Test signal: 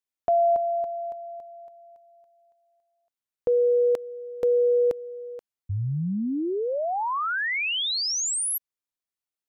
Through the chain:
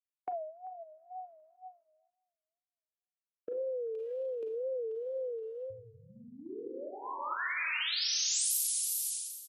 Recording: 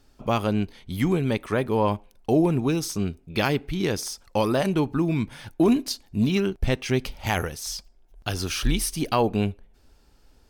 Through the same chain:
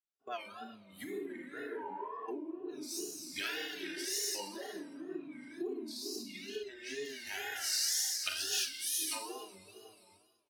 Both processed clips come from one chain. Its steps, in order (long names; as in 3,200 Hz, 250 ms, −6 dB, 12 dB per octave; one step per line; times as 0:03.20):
parametric band 2,100 Hz −2.5 dB 0.27 octaves
comb filter 3 ms, depth 66%
four-comb reverb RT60 2.1 s, combs from 33 ms, DRR −5 dB
downward compressor 12 to 1, threshold −29 dBFS
parametric band 860 Hz −6 dB 1.3 octaves
tape wow and flutter 2.1 Hz 150 cents
noise reduction from a noise print of the clip's start 14 dB
high-pass filter 520 Hz 12 dB per octave
far-end echo of a speakerphone 390 ms, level −22 dB
multiband upward and downward expander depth 70%